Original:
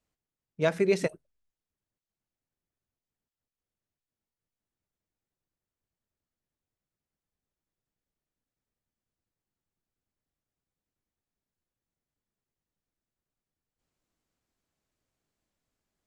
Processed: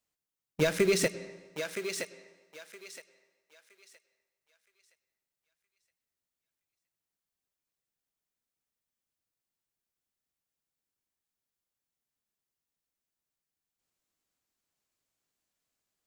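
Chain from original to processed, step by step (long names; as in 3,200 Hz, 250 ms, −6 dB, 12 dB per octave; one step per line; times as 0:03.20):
spectral tilt +2 dB per octave
leveller curve on the samples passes 2
in parallel at −6 dB: bit reduction 5 bits
on the sum: downward compressor, threshold −21 dBFS, peak gain reduction 8.5 dB
on a send at −15.5 dB: convolution reverb RT60 1.2 s, pre-delay 94 ms
on the sum: dynamic equaliser 850 Hz, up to −7 dB, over −40 dBFS, Q 1.3
feedback echo with a high-pass in the loop 968 ms, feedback 29%, high-pass 580 Hz, level −6 dB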